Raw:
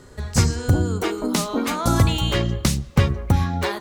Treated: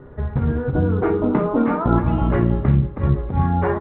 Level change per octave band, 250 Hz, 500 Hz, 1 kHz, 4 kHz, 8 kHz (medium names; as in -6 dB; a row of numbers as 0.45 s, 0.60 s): +4.0 dB, +4.5 dB, +2.5 dB, under -20 dB, under -40 dB